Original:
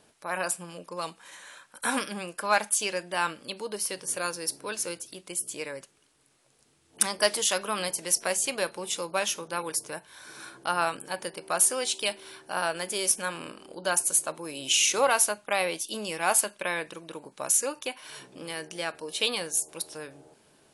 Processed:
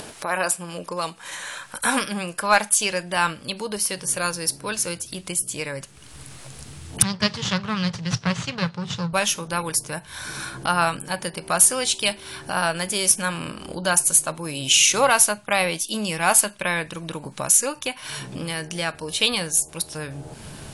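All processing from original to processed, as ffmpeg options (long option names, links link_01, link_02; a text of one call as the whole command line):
ffmpeg -i in.wav -filter_complex "[0:a]asettb=1/sr,asplit=3[link_01][link_02][link_03];[link_01]atrim=end=7.024[link_04];[link_02]atrim=start=7.02:end=9.13,asetpts=PTS-STARTPTS,afade=type=in:duration=0.004:curve=qsin,afade=type=out:start_time=2.106:duration=0.004:curve=qsin,aeval=exprs='max(val(0),0)':channel_layout=same,highpass=frequency=110:width=0.5412,highpass=frequency=110:width=1.3066,equalizer=frequency=120:width_type=q:width=4:gain=8,equalizer=frequency=170:width_type=q:width=4:gain=8,equalizer=frequency=320:width_type=q:width=4:gain=-7,equalizer=frequency=670:width_type=q:width=4:gain=-6,equalizer=frequency=2300:width_type=q:width=4:gain=-3,lowpass=frequency=5500:width=0.5412,lowpass=frequency=5500:width=1.3066[link_05];[link_03]atrim=start=9.126[link_06];[link_04][link_05]acrossfade=duration=0.004:curve1=hsin:curve2=qsin[link_07];[link_07][link_06]acrossfade=duration=0.004:curve1=qsin:curve2=hsin,asubboost=boost=6.5:cutoff=140,acompressor=mode=upward:threshold=-32dB:ratio=2.5,volume=7dB" out.wav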